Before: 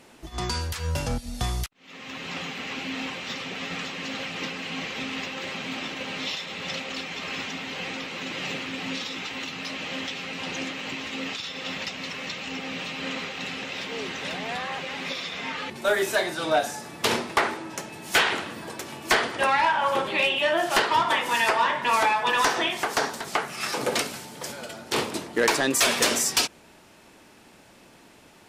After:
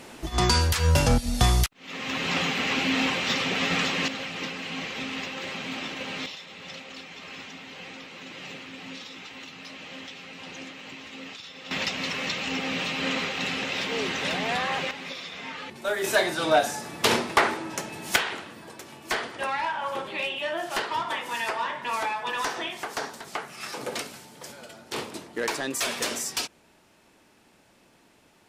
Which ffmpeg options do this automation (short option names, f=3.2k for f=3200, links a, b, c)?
-af "asetnsamples=n=441:p=0,asendcmd='4.08 volume volume -1dB;6.26 volume volume -8.5dB;11.71 volume volume 4dB;14.91 volume volume -5dB;16.04 volume volume 2dB;18.16 volume volume -7dB',volume=7.5dB"